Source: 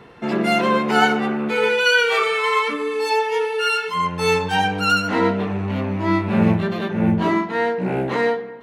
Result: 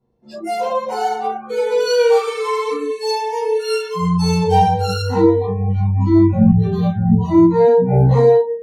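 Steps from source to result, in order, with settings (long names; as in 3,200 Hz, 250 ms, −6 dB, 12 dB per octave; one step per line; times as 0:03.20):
low-shelf EQ 340 Hz +10.5 dB
brickwall limiter −9 dBFS, peak gain reduction 9.5 dB
flat-topped bell 2,000 Hz −12.5 dB
rectangular room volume 61 cubic metres, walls mixed, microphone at 1.8 metres
noise reduction from a noise print of the clip's start 30 dB
level −5 dB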